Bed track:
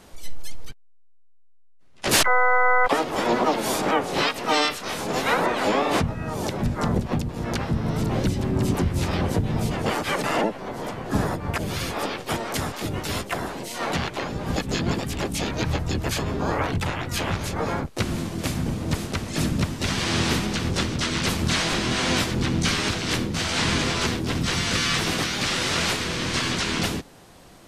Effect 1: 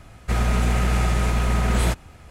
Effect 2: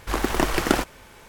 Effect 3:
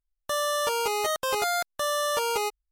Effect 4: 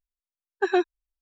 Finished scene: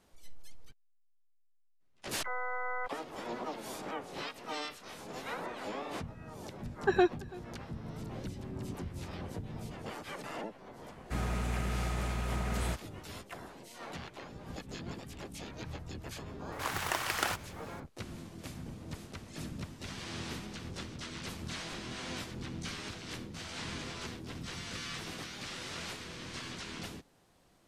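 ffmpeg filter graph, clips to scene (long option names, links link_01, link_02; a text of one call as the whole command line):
ffmpeg -i bed.wav -i cue0.wav -i cue1.wav -i cue2.wav -i cue3.wav -filter_complex "[0:a]volume=-18dB[link_01];[4:a]aecho=1:1:333:0.0794[link_02];[1:a]highpass=53[link_03];[2:a]highpass=820[link_04];[link_02]atrim=end=1.21,asetpts=PTS-STARTPTS,volume=-4dB,afade=type=in:duration=0.004:curve=hsin,afade=type=out:start_time=1.206:duration=0.004:curve=hsin,adelay=6250[link_05];[link_03]atrim=end=2.3,asetpts=PTS-STARTPTS,volume=-12.5dB,afade=type=in:duration=0.004:curve=hsin,afade=type=out:start_time=2.296:duration=0.004:curve=hsin,adelay=477162S[link_06];[link_04]atrim=end=1.28,asetpts=PTS-STARTPTS,volume=-6.5dB,afade=type=in:duration=0.004:curve=hsin,afade=type=out:start_time=1.276:duration=0.004:curve=hsin,adelay=728532S[link_07];[link_01][link_05][link_06][link_07]amix=inputs=4:normalize=0" out.wav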